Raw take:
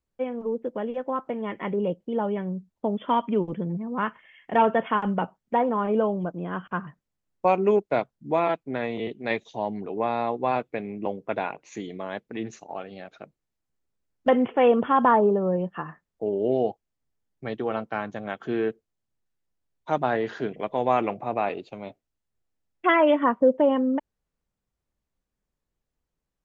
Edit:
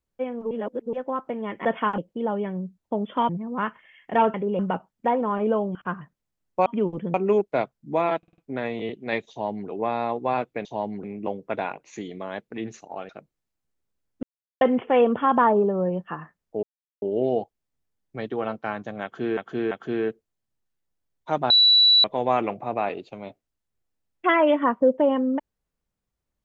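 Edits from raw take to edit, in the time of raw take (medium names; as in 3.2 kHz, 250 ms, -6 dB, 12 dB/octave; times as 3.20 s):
0.51–0.93 s: reverse
1.65–1.90 s: swap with 4.74–5.07 s
3.21–3.69 s: move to 7.52 s
6.23–6.61 s: delete
8.56 s: stutter 0.05 s, 5 plays
9.48–9.87 s: copy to 10.83 s
12.88–13.14 s: delete
14.28 s: insert silence 0.38 s
16.30 s: insert silence 0.39 s
18.31–18.65 s: loop, 3 plays
20.10–20.64 s: bleep 3.94 kHz -12.5 dBFS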